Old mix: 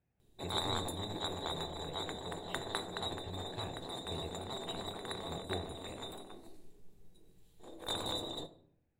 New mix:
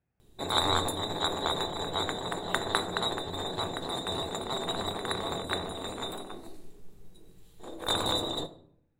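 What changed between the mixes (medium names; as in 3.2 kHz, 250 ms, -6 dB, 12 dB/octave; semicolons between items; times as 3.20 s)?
background +8.5 dB; master: add peaking EQ 1.3 kHz +4.5 dB 0.68 oct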